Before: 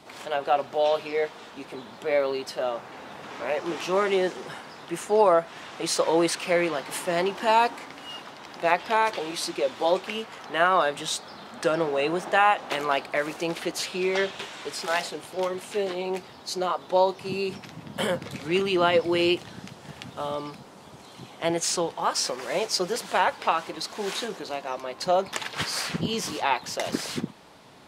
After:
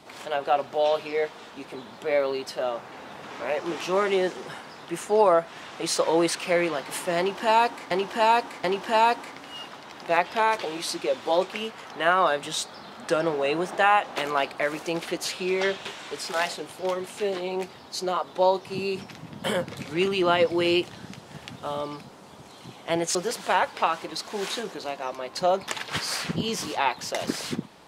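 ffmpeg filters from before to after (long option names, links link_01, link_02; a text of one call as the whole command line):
ffmpeg -i in.wav -filter_complex "[0:a]asplit=4[link_01][link_02][link_03][link_04];[link_01]atrim=end=7.912[link_05];[link_02]atrim=start=7.178:end=7.912[link_06];[link_03]atrim=start=7.178:end=21.692[link_07];[link_04]atrim=start=22.798[link_08];[link_05][link_06]acrossfade=duration=0.004:curve1=hsin:curve2=hsin[link_09];[link_09][link_07]acrossfade=duration=0.004:curve1=hsin:curve2=hsin[link_10];[link_10][link_08]acrossfade=duration=0.004:curve1=hsin:curve2=hsin" out.wav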